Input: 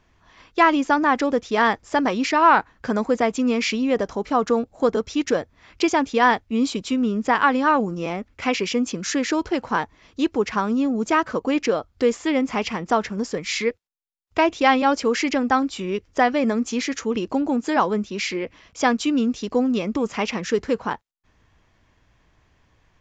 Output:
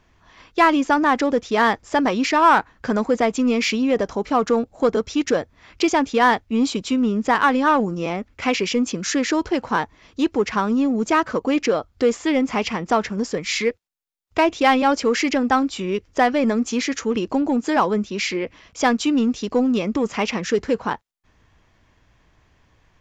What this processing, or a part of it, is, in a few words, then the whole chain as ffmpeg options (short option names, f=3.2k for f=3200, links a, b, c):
parallel distortion: -filter_complex "[0:a]asplit=2[a][b];[b]asoftclip=type=hard:threshold=-18dB,volume=-7dB[c];[a][c]amix=inputs=2:normalize=0,volume=-1dB"